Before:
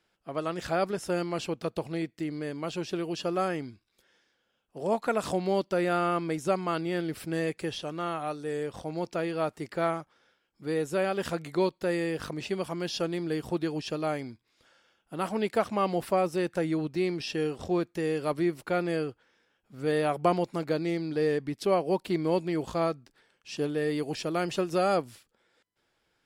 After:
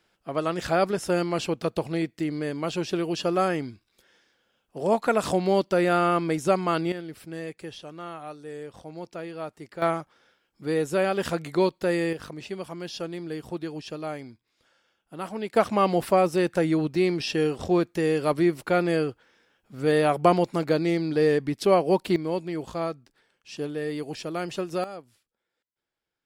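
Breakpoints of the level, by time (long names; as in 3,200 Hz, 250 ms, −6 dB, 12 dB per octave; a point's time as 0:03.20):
+5 dB
from 0:06.92 −5.5 dB
from 0:09.82 +4 dB
from 0:12.13 −3 dB
from 0:15.56 +5.5 dB
from 0:22.16 −1.5 dB
from 0:24.84 −13.5 dB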